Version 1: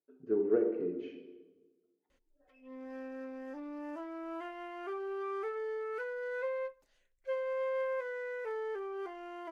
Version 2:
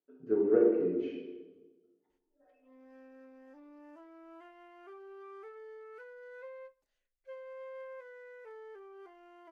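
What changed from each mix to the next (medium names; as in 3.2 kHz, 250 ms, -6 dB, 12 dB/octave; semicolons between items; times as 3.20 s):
speech: send +7.5 dB; background -11.5 dB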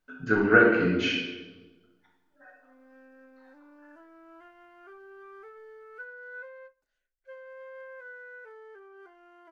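speech: remove band-pass filter 400 Hz, Q 3.4; master: add peaking EQ 1.5 kHz +14 dB 0.21 oct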